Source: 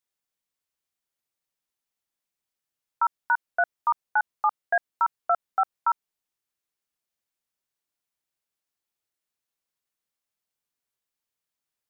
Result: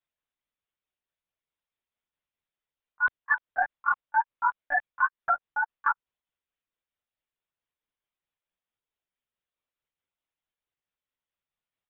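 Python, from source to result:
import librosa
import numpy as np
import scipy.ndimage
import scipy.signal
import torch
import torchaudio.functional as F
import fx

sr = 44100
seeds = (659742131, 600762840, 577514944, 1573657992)

y = fx.pitch_ramps(x, sr, semitones=3.0, every_ms=196)
y = fx.lpc_monotone(y, sr, seeds[0], pitch_hz=290.0, order=16)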